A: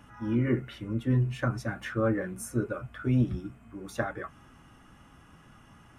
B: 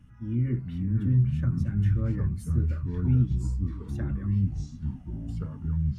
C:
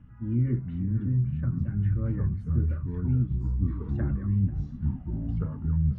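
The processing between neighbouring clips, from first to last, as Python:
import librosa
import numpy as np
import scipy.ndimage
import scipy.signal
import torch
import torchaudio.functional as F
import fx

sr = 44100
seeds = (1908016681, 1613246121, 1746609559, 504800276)

y1 = fx.low_shelf(x, sr, hz=140.0, db=4.0)
y1 = fx.echo_pitch(y1, sr, ms=386, semitones=-4, count=3, db_per_echo=-3.0)
y1 = fx.curve_eq(y1, sr, hz=(150.0, 750.0, 2200.0), db=(0, -22, -13))
y1 = y1 * librosa.db_to_amplitude(1.5)
y2 = scipy.signal.sosfilt(scipy.signal.butter(2, 1800.0, 'lowpass', fs=sr, output='sos'), y1)
y2 = fx.rider(y2, sr, range_db=4, speed_s=0.5)
y2 = y2 + 10.0 ** (-19.5 / 20.0) * np.pad(y2, (int(490 * sr / 1000.0), 0))[:len(y2)]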